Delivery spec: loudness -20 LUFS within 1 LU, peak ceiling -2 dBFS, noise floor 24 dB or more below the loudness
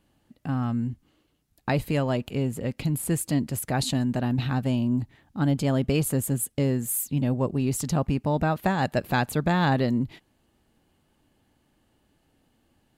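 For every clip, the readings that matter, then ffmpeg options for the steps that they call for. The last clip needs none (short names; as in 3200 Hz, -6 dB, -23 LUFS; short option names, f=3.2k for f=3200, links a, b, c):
loudness -26.0 LUFS; peak -9.0 dBFS; loudness target -20.0 LUFS
-> -af "volume=6dB"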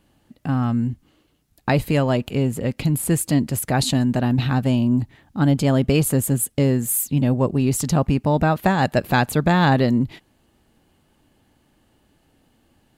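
loudness -20.0 LUFS; peak -3.0 dBFS; noise floor -63 dBFS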